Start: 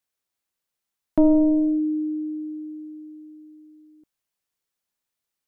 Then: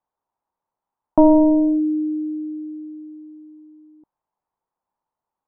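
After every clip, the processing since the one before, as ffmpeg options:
-af "lowpass=f=920:t=q:w=4.8,volume=2.5dB"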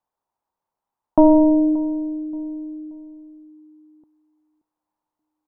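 -filter_complex "[0:a]asplit=2[a][b];[b]adelay=578,lowpass=f=880:p=1,volume=-18dB,asplit=2[c][d];[d]adelay=578,lowpass=f=880:p=1,volume=0.37,asplit=2[e][f];[f]adelay=578,lowpass=f=880:p=1,volume=0.37[g];[a][c][e][g]amix=inputs=4:normalize=0"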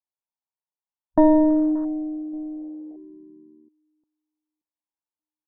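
-af "afwtdn=0.0282,volume=-3dB"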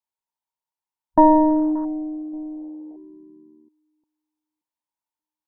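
-af "equalizer=f=930:t=o:w=0.3:g=11"

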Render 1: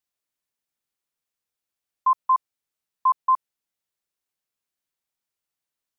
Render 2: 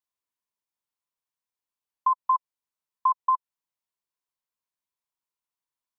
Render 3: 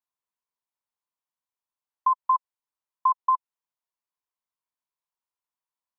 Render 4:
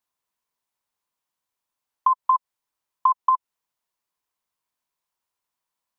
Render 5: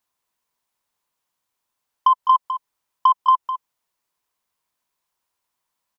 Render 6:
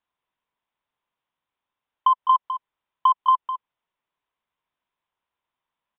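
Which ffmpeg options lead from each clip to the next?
-af "equalizer=f=1k:t=o:w=0.33:g=11.5,acompressor=threshold=-12dB:ratio=6,volume=-7.5dB"
-af "equalizer=f=950:w=0.88:g=7.5,volume=-6.5dB"
-af "acompressor=threshold=-24dB:ratio=5,volume=8dB"
-af "asoftclip=type=tanh:threshold=-10.5dB,aecho=1:1:206:0.282,volume=5dB"
-af "aresample=8000,aresample=44100,volume=-2.5dB"

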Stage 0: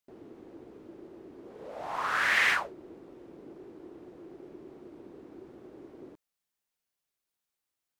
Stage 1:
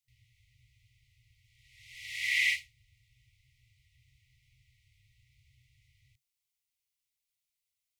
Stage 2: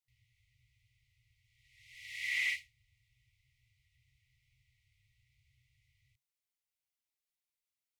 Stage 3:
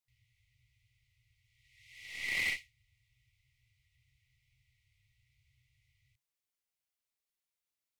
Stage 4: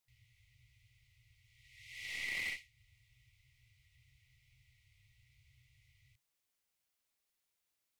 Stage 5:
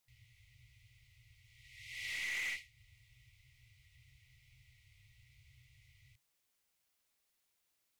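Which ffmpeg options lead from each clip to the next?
-filter_complex "[0:a]afftfilt=real='re*(1-between(b*sr/4096,130,1900))':imag='im*(1-between(b*sr/4096,130,1900))':win_size=4096:overlap=0.75,acrossover=split=320|6100[a][b][c];[a]alimiter=level_in=34dB:limit=-24dB:level=0:latency=1:release=359,volume=-34dB[d];[d][b][c]amix=inputs=3:normalize=0"
-af "equalizer=f=1.8k:t=o:w=0.71:g=3.5,asoftclip=type=tanh:threshold=-16dB,volume=-7dB"
-af "aeval=exprs='0.0596*(cos(1*acos(clip(val(0)/0.0596,-1,1)))-cos(1*PI/2))+0.0106*(cos(4*acos(clip(val(0)/0.0596,-1,1)))-cos(4*PI/2))+0.00944*(cos(6*acos(clip(val(0)/0.0596,-1,1)))-cos(6*PI/2))':c=same"
-af "acompressor=threshold=-45dB:ratio=3,volume=5dB"
-af "asoftclip=type=tanh:threshold=-38dB,volume=4dB"

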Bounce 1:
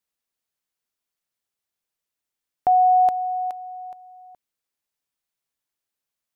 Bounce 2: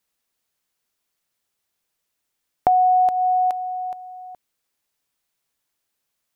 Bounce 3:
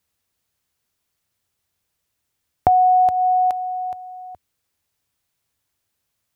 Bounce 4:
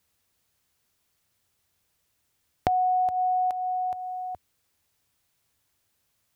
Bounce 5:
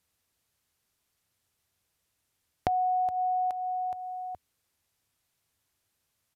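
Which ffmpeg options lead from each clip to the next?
-af "acompressor=threshold=-23dB:ratio=6,volume=8dB"
-af "equalizer=f=85:t=o:w=1.4:g=14,volume=1.5dB"
-af "acompressor=threshold=-31dB:ratio=2.5,volume=2.5dB"
-af "aresample=32000,aresample=44100,volume=-3.5dB"

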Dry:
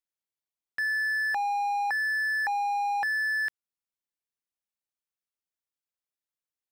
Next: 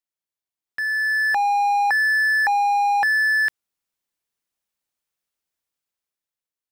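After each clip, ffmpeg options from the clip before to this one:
-af "dynaudnorm=f=280:g=7:m=9dB"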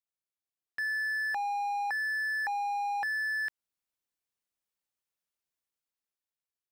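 -af "alimiter=limit=-20dB:level=0:latency=1:release=156,volume=-7dB"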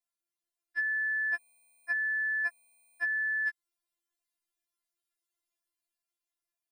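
-af "equalizer=f=10k:w=7.4:g=6.5,afftfilt=real='re*4*eq(mod(b,16),0)':imag='im*4*eq(mod(b,16),0)':win_size=2048:overlap=0.75,volume=2.5dB"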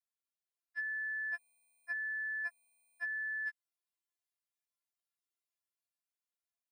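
-af "highpass=490,volume=-7.5dB"

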